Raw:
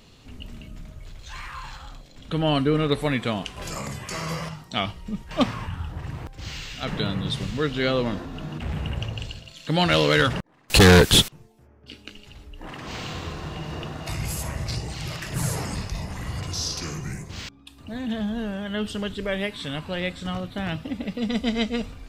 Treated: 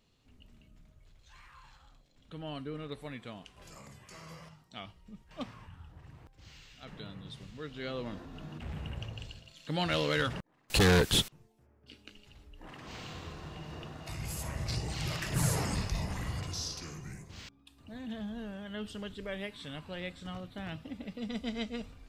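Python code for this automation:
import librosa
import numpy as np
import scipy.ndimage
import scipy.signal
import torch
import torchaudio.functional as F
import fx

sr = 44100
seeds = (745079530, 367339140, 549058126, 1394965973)

y = fx.gain(x, sr, db=fx.line((7.53, -19.0), (8.35, -11.0), (14.1, -11.0), (15.01, -3.0), (16.12, -3.0), (16.85, -12.0)))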